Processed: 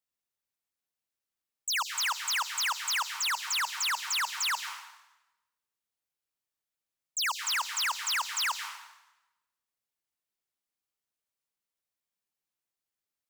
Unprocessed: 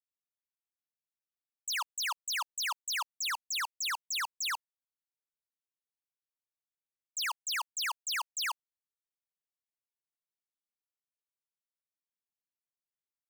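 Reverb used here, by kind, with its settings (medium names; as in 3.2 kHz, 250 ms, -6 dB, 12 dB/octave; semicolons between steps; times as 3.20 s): plate-style reverb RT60 0.98 s, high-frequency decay 0.9×, pre-delay 115 ms, DRR 8 dB; trim +4 dB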